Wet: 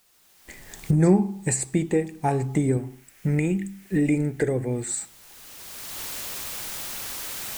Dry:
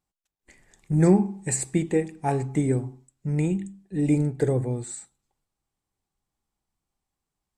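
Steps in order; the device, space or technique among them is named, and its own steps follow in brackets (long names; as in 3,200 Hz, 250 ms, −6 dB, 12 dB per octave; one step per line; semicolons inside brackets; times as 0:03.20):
cheap recorder with automatic gain (white noise bed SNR 37 dB; camcorder AGC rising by 20 dB per second)
0:02.77–0:04.89: octave-band graphic EQ 125/1,000/2,000/4,000 Hz −5/−5/+9/−5 dB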